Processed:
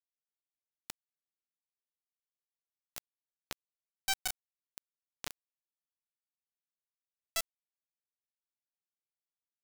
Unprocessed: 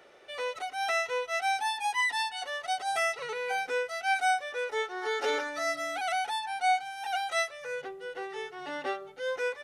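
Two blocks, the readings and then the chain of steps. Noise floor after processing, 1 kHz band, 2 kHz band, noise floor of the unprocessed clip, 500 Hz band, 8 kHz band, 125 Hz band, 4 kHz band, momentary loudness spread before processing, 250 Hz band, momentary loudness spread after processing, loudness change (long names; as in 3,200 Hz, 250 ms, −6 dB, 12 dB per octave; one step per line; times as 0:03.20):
below −85 dBFS, −23.5 dB, −18.5 dB, −49 dBFS, −26.5 dB, −3.0 dB, can't be measured, −9.0 dB, 10 LU, −18.0 dB, 21 LU, −9.0 dB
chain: downward compressor 2 to 1, threshold −31 dBFS, peak gain reduction 5.5 dB
bit reduction 4 bits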